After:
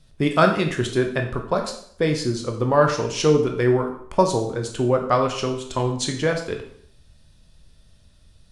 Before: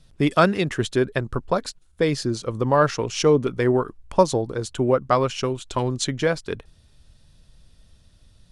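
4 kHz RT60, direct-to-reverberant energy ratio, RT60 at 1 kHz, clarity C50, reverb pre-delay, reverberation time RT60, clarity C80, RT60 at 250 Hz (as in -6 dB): 0.60 s, 3.0 dB, 0.60 s, 8.0 dB, 7 ms, 0.60 s, 11.0 dB, 0.60 s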